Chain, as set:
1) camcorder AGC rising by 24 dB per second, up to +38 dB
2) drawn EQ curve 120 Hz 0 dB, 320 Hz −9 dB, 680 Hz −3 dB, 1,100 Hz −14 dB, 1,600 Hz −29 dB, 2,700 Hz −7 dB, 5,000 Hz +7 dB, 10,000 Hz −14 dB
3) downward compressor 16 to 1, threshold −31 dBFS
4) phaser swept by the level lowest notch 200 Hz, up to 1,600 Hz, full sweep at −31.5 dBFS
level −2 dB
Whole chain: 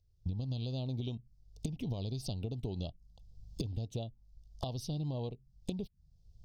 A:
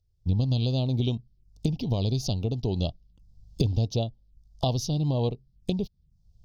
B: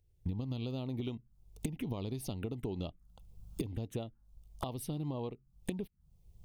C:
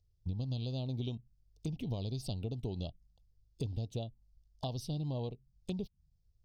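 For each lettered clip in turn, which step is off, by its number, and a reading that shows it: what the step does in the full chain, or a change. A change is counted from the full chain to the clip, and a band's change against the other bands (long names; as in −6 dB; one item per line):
3, average gain reduction 9.0 dB
2, 4 kHz band −5.5 dB
1, change in crest factor −2.0 dB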